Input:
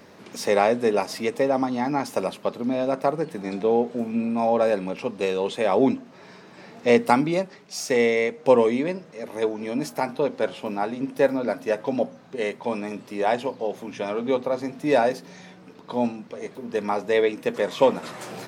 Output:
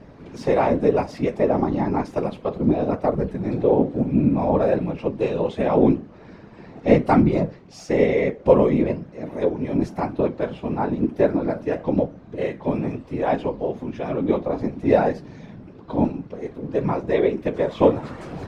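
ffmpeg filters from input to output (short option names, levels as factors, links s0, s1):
-af "flanger=delay=9.7:depth=8.5:regen=64:speed=0.99:shape=triangular,aemphasis=mode=reproduction:type=riaa,afftfilt=real='hypot(re,im)*cos(2*PI*random(0))':imag='hypot(re,im)*sin(2*PI*random(1))':win_size=512:overlap=0.75,volume=2.82"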